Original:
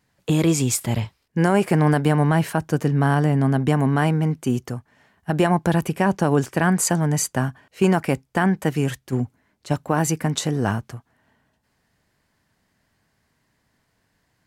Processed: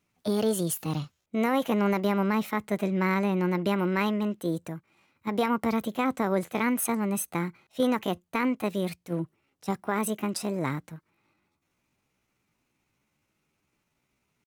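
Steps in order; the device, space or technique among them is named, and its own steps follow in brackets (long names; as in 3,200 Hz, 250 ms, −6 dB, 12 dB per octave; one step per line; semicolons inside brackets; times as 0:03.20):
0:02.56–0:04.43: parametric band 1,900 Hz +4 dB 1.3 octaves
chipmunk voice (pitch shifter +5 semitones)
level −7.5 dB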